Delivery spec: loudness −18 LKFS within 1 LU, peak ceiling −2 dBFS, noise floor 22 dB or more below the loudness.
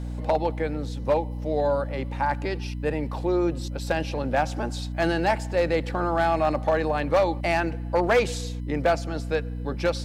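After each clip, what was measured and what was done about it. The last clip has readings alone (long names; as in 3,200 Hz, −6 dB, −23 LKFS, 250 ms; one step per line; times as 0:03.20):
share of clipped samples 0.6%; peaks flattened at −14.5 dBFS; mains hum 60 Hz; hum harmonics up to 300 Hz; level of the hum −29 dBFS; integrated loudness −25.5 LKFS; sample peak −14.5 dBFS; target loudness −18.0 LKFS
→ clipped peaks rebuilt −14.5 dBFS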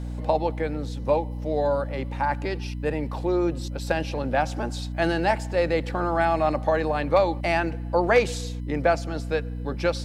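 share of clipped samples 0.0%; mains hum 60 Hz; hum harmonics up to 300 Hz; level of the hum −29 dBFS
→ mains-hum notches 60/120/180/240/300 Hz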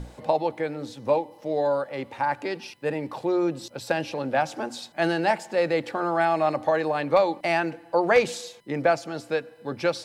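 mains hum none found; integrated loudness −26.0 LKFS; sample peak −7.0 dBFS; target loudness −18.0 LKFS
→ level +8 dB
brickwall limiter −2 dBFS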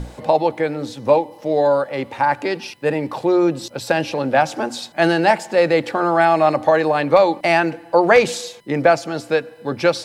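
integrated loudness −18.0 LKFS; sample peak −2.0 dBFS; background noise floor −43 dBFS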